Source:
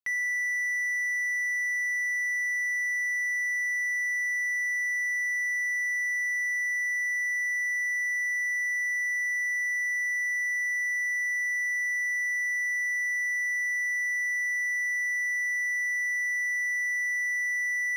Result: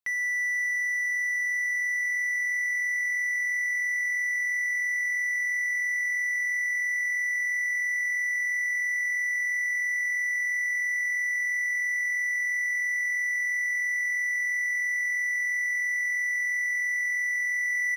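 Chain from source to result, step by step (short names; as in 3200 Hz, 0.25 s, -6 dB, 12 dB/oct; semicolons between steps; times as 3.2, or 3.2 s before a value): frequency-shifting echo 0.487 s, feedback 64%, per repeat +43 Hz, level -17 dB; vocal rider; spring tank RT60 1.9 s, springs 31/38 ms, chirp 35 ms, DRR 15.5 dB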